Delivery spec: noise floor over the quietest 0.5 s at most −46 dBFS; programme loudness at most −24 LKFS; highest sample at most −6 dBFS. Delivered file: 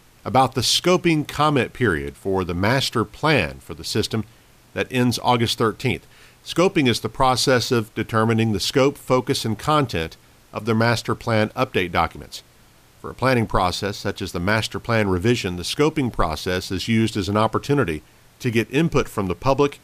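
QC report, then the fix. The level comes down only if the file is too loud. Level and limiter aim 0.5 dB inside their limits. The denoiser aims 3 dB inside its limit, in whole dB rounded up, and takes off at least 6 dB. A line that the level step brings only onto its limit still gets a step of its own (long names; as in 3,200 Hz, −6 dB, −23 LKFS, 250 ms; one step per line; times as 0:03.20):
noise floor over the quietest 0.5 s −52 dBFS: in spec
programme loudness −21.0 LKFS: out of spec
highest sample −4.0 dBFS: out of spec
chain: level −3.5 dB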